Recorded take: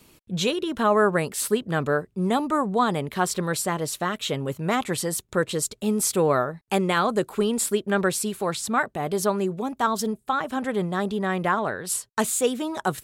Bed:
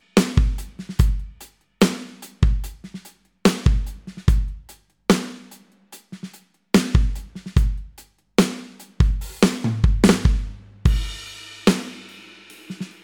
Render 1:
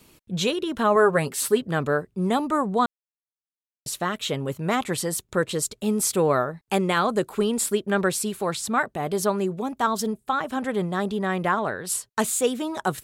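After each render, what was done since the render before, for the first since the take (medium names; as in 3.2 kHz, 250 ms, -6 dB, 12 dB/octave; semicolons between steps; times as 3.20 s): 0.95–1.66 s: comb 7.4 ms, depth 53%; 2.86–3.86 s: mute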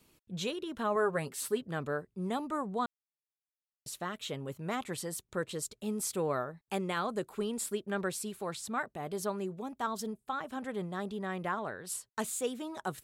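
trim -11.5 dB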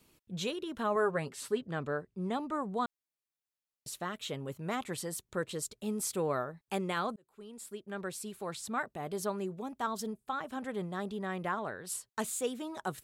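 1.12–2.62 s: distance through air 50 m; 7.16–8.73 s: fade in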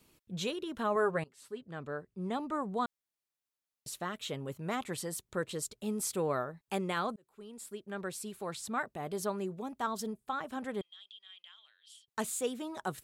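1.24–2.48 s: fade in, from -20.5 dB; 10.81–12.08 s: ladder band-pass 3.3 kHz, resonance 90%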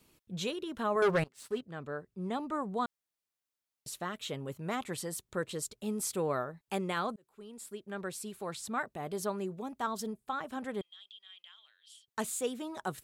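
1.02–1.61 s: waveshaping leveller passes 2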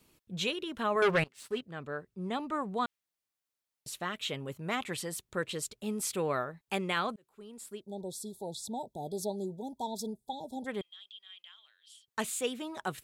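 7.82–10.66 s: spectral selection erased 950–3300 Hz; dynamic bell 2.6 kHz, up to +8 dB, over -54 dBFS, Q 1.1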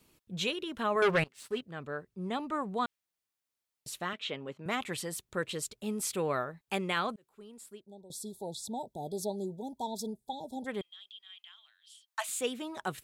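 4.13–4.66 s: band-pass 200–4100 Hz; 7.28–8.10 s: fade out, to -16 dB; 11.21–12.29 s: steep high-pass 630 Hz 96 dB/octave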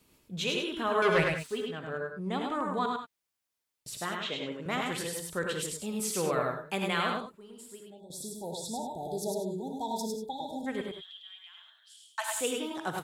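on a send: delay 103 ms -3.5 dB; on the sum: gated-style reverb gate 110 ms rising, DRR 5 dB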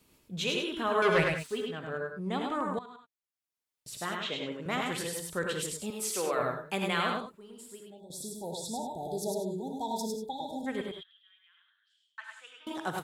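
2.79–4.10 s: fade in quadratic, from -17.5 dB; 5.90–6.40 s: high-pass 350 Hz; 11.03–12.67 s: ladder band-pass 1.8 kHz, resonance 45%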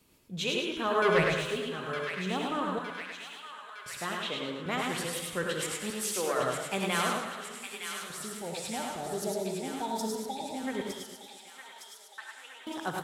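on a send: feedback echo behind a high-pass 911 ms, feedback 63%, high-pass 1.5 kHz, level -6 dB; on the sum: modulated delay 114 ms, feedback 60%, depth 111 cents, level -10.5 dB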